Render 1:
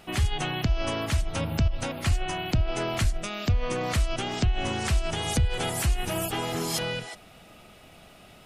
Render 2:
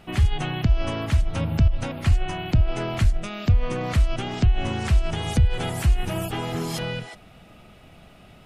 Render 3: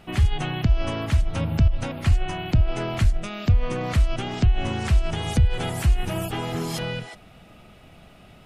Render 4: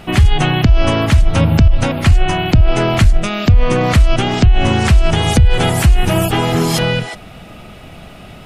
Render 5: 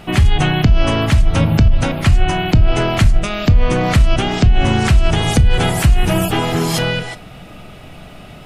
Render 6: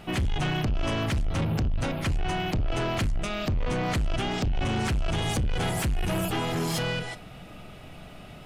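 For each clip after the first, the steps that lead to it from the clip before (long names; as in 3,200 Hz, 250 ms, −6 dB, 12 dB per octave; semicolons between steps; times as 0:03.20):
bass and treble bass +6 dB, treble −6 dB
no processing that can be heard
boost into a limiter +14.5 dB; level −1 dB
rectangular room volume 310 cubic metres, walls furnished, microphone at 0.4 metres; level −1.5 dB
soft clipping −14.5 dBFS, distortion −8 dB; level −8 dB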